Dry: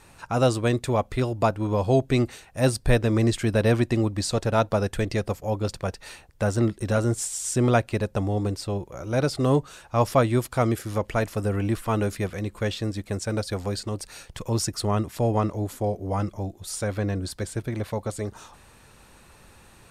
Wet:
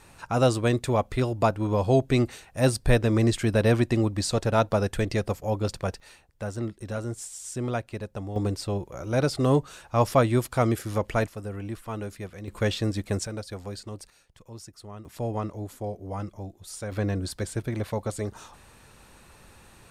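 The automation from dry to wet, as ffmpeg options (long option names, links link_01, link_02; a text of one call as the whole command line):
ffmpeg -i in.wav -af "asetnsamples=nb_out_samples=441:pad=0,asendcmd='6 volume volume -9dB;8.36 volume volume -0.5dB;11.27 volume volume -9.5dB;12.48 volume volume 1.5dB;13.27 volume volume -8dB;14.1 volume volume -18dB;15.05 volume volume -7dB;16.92 volume volume -0.5dB',volume=-0.5dB" out.wav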